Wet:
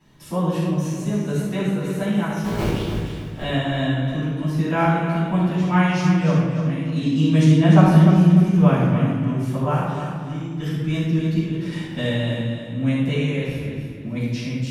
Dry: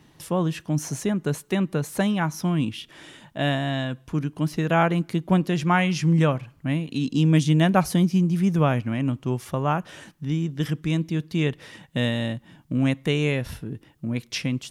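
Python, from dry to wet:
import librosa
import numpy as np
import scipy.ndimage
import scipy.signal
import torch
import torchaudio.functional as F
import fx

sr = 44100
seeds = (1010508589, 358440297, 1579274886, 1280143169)

y = fx.cycle_switch(x, sr, every=3, mode='inverted', at=(2.34, 3.42), fade=0.02)
y = fx.high_shelf(y, sr, hz=4100.0, db=-11.5, at=(7.44, 8.13))
y = fx.over_compress(y, sr, threshold_db=-32.0, ratio=-1.0, at=(11.37, 11.97))
y = fx.tremolo_random(y, sr, seeds[0], hz=3.5, depth_pct=55)
y = fx.echo_feedback(y, sr, ms=297, feedback_pct=34, wet_db=-8)
y = fx.room_shoebox(y, sr, seeds[1], volume_m3=590.0, walls='mixed', distance_m=9.0)
y = y * librosa.db_to_amplitude(-13.0)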